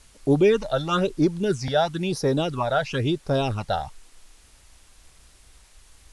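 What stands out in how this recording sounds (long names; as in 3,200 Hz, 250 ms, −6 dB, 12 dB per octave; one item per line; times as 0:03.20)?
phaser sweep stages 8, 1 Hz, lowest notch 320–2,800 Hz
a quantiser's noise floor 10 bits, dither triangular
AAC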